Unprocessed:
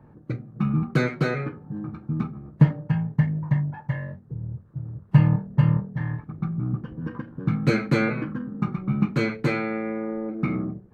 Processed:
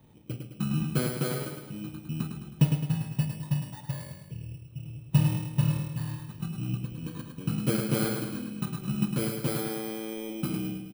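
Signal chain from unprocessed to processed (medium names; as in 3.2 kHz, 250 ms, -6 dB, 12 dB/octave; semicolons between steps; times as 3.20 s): bit-reversed sample order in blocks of 16 samples; feedback delay 106 ms, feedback 51%, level -6 dB; trim -6.5 dB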